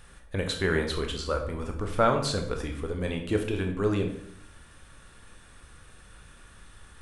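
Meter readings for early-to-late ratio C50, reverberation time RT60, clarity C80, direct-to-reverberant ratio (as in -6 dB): 7.5 dB, 0.70 s, 10.5 dB, 3.5 dB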